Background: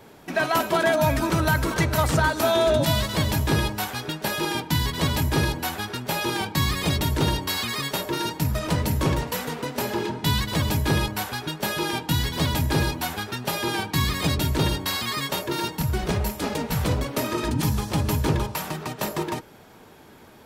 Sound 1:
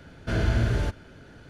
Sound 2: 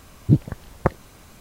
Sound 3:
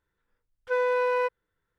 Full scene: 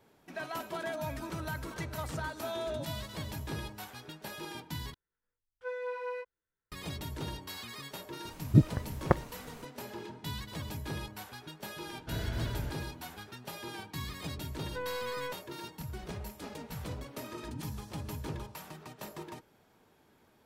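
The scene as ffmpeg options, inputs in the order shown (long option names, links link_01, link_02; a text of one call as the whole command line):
ffmpeg -i bed.wav -i cue0.wav -i cue1.wav -i cue2.wav -filter_complex "[3:a]asplit=2[link_01][link_02];[0:a]volume=-16.5dB[link_03];[link_01]flanger=delay=17.5:depth=3.1:speed=1.2[link_04];[link_02]aeval=exprs='if(lt(val(0),0),0.447*val(0),val(0))':channel_layout=same[link_05];[link_03]asplit=2[link_06][link_07];[link_06]atrim=end=4.944[link_08];[link_04]atrim=end=1.78,asetpts=PTS-STARTPTS,volume=-10.5dB[link_09];[link_07]atrim=start=6.716[link_10];[2:a]atrim=end=1.4,asetpts=PTS-STARTPTS,volume=-5dB,afade=type=in:duration=0.004:curve=hsin,afade=type=out:start_time=1.396:duration=0.004:curve=hsin,adelay=8250[link_11];[1:a]atrim=end=1.49,asetpts=PTS-STARTPTS,volume=-12dB,afade=type=in:duration=0.004:curve=hsin,afade=type=out:start_time=1.486:duration=0.004:curve=hsin,adelay=11800[link_12];[link_05]atrim=end=1.78,asetpts=PTS-STARTPTS,volume=-11dB,afade=type=in:duration=0.004:curve=hsin,afade=type=out:start_time=1.776:duration=0.004:curve=hsin,adelay=14050[link_13];[link_08][link_09]acrossfade=duration=0.004:curve1=hsin:curve2=hsin[link_14];[link_14][link_10]acrossfade=duration=0.004:curve1=hsin:curve2=hsin[link_15];[link_15][link_11][link_12][link_13]amix=inputs=4:normalize=0" out.wav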